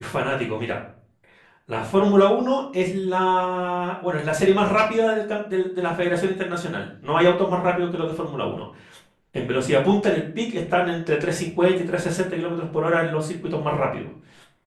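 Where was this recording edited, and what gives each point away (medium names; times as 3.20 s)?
no edits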